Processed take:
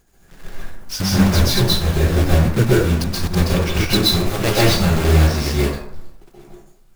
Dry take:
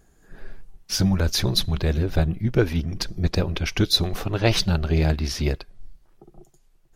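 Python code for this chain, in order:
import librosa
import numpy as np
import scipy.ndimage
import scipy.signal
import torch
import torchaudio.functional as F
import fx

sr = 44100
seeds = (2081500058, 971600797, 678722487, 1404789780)

y = fx.block_float(x, sr, bits=3)
y = fx.rev_plate(y, sr, seeds[0], rt60_s=0.71, hf_ratio=0.5, predelay_ms=115, drr_db=-7.0)
y = y * librosa.db_to_amplitude(-2.5)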